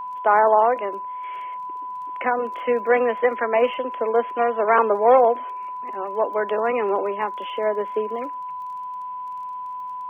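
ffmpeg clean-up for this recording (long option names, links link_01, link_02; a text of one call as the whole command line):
ffmpeg -i in.wav -af "adeclick=threshold=4,bandreject=frequency=1000:width=30" out.wav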